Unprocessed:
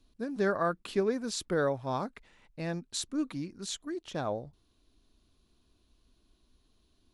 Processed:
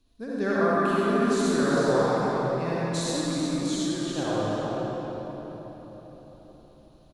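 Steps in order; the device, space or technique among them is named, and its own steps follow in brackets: cave (delay 366 ms -8.5 dB; reverberation RT60 4.6 s, pre-delay 49 ms, DRR -8.5 dB); 0.74–1.77 s: graphic EQ with 31 bands 250 Hz +6 dB, 500 Hz -12 dB, 5 kHz -6 dB; trim -1.5 dB

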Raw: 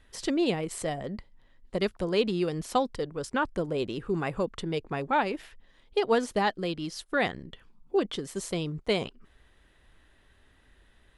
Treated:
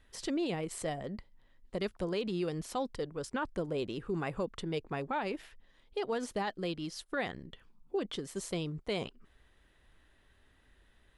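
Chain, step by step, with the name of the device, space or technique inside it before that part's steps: clipper into limiter (hard clipper -14 dBFS, distortion -46 dB; peak limiter -21 dBFS, peak gain reduction 7 dB); trim -4.5 dB

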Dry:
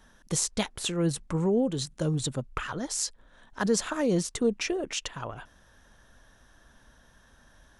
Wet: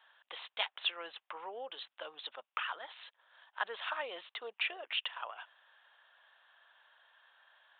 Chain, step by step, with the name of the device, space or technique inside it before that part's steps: musical greeting card (resampled via 8 kHz; high-pass 730 Hz 24 dB/octave; peaking EQ 2.9 kHz +5.5 dB 0.58 oct); trim -3 dB

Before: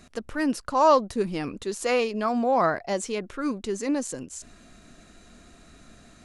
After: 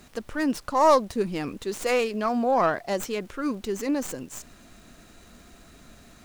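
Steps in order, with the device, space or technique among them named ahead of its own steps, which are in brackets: record under a worn stylus (tracing distortion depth 0.1 ms; crackle; pink noise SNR 32 dB)

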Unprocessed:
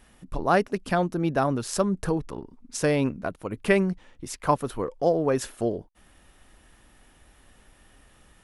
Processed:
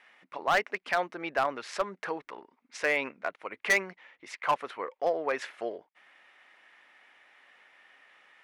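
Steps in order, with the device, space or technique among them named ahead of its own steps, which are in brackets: megaphone (band-pass 700–3400 Hz; peaking EQ 2.1 kHz +10 dB 0.51 oct; hard clipper -18.5 dBFS, distortion -10 dB)

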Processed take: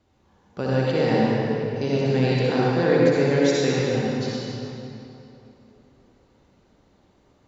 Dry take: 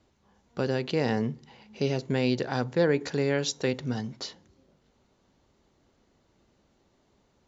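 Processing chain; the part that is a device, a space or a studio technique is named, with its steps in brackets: swimming-pool hall (reverberation RT60 3.0 s, pre-delay 53 ms, DRR -6 dB; treble shelf 4.5 kHz -4.5 dB)

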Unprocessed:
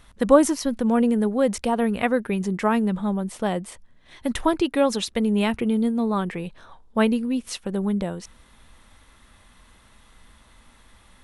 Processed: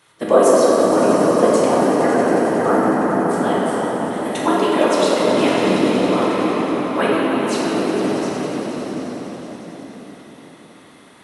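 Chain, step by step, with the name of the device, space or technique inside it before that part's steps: 1.74–3.27 s: elliptic band-stop 1.7–9.4 kHz; echo with a slow build-up 92 ms, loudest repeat 5, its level -12.5 dB; whispering ghost (whisper effect; high-pass 330 Hz 12 dB/octave; reverberation RT60 3.8 s, pre-delay 9 ms, DRR -6 dB)

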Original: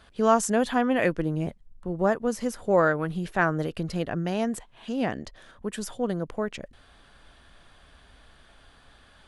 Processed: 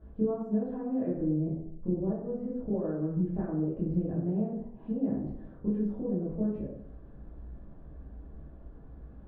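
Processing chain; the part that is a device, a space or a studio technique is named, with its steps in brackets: television next door (compression 6:1, threshold -36 dBFS, peak gain reduction 20 dB; low-pass 380 Hz 12 dB/octave; reverberation RT60 0.70 s, pre-delay 8 ms, DRR -9 dB)

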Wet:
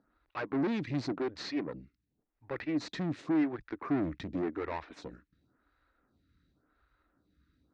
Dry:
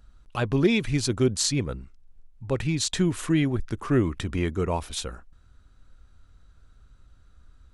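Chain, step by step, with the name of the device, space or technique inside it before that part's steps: vibe pedal into a guitar amplifier (lamp-driven phase shifter 0.91 Hz; valve stage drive 31 dB, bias 0.7; cabinet simulation 100–4300 Hz, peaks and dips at 100 Hz -9 dB, 300 Hz +9 dB, 1.9 kHz +5 dB, 3.1 kHz -8 dB)

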